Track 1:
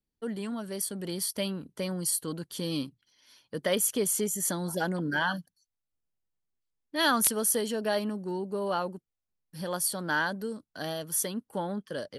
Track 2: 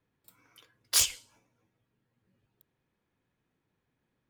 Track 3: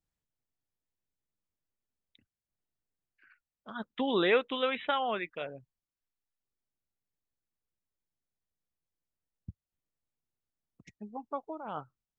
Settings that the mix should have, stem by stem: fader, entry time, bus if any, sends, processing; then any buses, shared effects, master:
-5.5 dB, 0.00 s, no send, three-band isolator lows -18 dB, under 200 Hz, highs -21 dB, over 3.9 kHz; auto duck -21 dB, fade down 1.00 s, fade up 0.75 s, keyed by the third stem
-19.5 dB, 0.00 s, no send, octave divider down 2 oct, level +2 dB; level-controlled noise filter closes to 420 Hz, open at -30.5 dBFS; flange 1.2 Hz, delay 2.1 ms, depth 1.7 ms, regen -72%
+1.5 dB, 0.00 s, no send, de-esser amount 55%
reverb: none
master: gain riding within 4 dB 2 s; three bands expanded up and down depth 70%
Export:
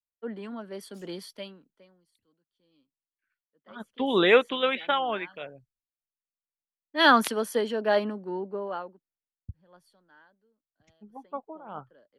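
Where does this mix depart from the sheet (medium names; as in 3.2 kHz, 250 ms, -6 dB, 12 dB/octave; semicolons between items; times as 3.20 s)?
stem 1 -5.5 dB -> +2.0 dB; stem 2 -19.5 dB -> -29.5 dB; master: missing gain riding within 4 dB 2 s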